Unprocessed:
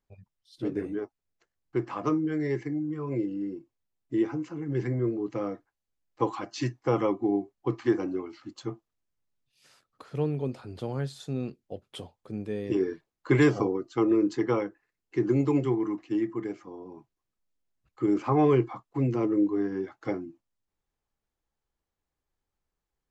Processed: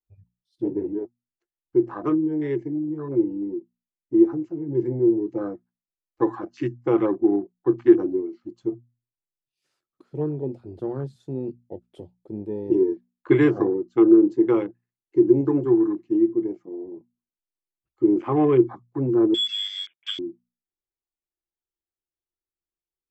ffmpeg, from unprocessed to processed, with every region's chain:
ffmpeg -i in.wav -filter_complex "[0:a]asettb=1/sr,asplit=3[link_01][link_02][link_03];[link_01]atrim=end=19.344[link_04];[link_02]atrim=start=19.34:end=20.19,asetpts=PTS-STARTPTS,afade=type=in:duration=0.004:curve=qsin,afade=type=out:start_time=0.846:duration=0.004:curve=qsin,lowshelf=frequency=120:gain=-9,acrusher=bits=8:mix=0:aa=0.5,lowpass=frequency=3100:width_type=q:width=0.5098,lowpass=frequency=3100:width_type=q:width=0.6013,lowpass=frequency=3100:width_type=q:width=0.9,lowpass=frequency=3100:width_type=q:width=2.563,afreqshift=-3700[link_05];[link_03]atrim=start=20.186[link_06];[link_04][link_05]acrossfade=duration=0.004:curve1=hsin:curve2=qsin[link_07];[link_07][link_06]acrossfade=duration=0.004:curve1=qsin:curve2=hsin,afwtdn=0.0112,equalizer=frequency=350:width_type=o:width=0.28:gain=12.5,bandreject=frequency=60:width_type=h:width=6,bandreject=frequency=120:width_type=h:width=6,bandreject=frequency=180:width_type=h:width=6,bandreject=frequency=240:width_type=h:width=6" out.wav

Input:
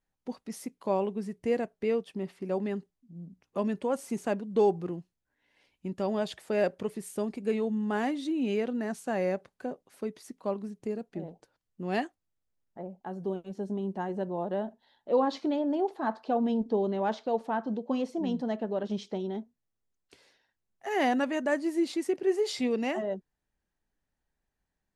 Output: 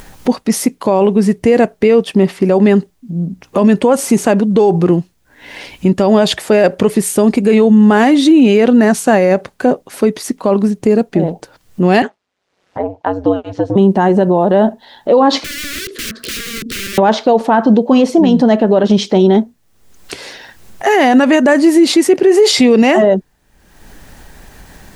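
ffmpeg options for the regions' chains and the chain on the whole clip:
ffmpeg -i in.wav -filter_complex "[0:a]asettb=1/sr,asplit=3[link_01][link_02][link_03];[link_01]atrim=end=12.024[link_04];[link_02]atrim=start=12.02:end=13.76,asetpts=PTS-STARTPTS,afade=type=in:duration=0.004:curve=qsin,afade=type=out:start_time=1.736:duration=0.004:curve=qsin,highpass=340,lowpass=4200,aeval=exprs='val(0)*sin(2*PI*93*n/s)':channel_layout=same[link_05];[link_03]atrim=start=13.756[link_06];[link_04][link_05]acrossfade=duration=0.004:curve1=hsin:curve2=qsin[link_07];[link_07][link_06]acrossfade=duration=0.004:curve1=qsin:curve2=hsin,asettb=1/sr,asplit=3[link_08][link_09][link_10];[link_08]atrim=end=15.444[link_11];[link_09]atrim=start=15.44:end=16.98,asetpts=PTS-STARTPTS,afade=type=in:duration=0.004:curve=qsin,afade=type=out:start_time=1.536:duration=0.004:curve=qsin,acompressor=threshold=-44dB:ratio=2.5:attack=3.2:release=140:knee=1:detection=peak,aeval=exprs='(mod(141*val(0)+1,2)-1)/141':channel_layout=same,asuperstop=centerf=820:order=4:qfactor=0.66[link_12];[link_10]atrim=start=16.976[link_13];[link_11][link_12]acrossfade=duration=0.004:curve1=hsin:curve2=qsin[link_14];[link_14][link_13]acrossfade=duration=0.004:curve1=qsin:curve2=hsin,acompressor=mode=upward:threshold=-45dB:ratio=2.5,alimiter=level_in=26.5dB:limit=-1dB:release=50:level=0:latency=1,volume=-1dB" out.wav

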